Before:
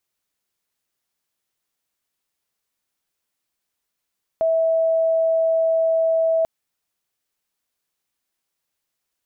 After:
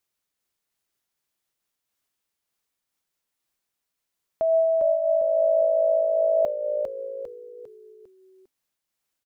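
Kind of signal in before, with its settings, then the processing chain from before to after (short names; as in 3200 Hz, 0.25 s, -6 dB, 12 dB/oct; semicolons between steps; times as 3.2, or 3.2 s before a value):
tone sine 652 Hz -15.5 dBFS 2.04 s
on a send: frequency-shifting echo 0.401 s, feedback 44%, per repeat -55 Hz, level -6 dB; on the sum: noise-modulated level, depth 60%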